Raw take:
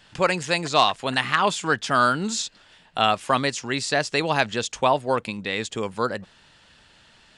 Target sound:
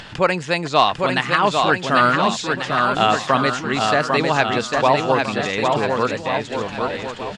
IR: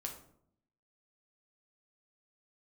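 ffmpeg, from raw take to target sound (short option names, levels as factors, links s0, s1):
-af "aemphasis=mode=reproduction:type=50fm,acompressor=mode=upward:threshold=0.0316:ratio=2.5,aecho=1:1:800|1440|1952|2362|2689:0.631|0.398|0.251|0.158|0.1,volume=1.5"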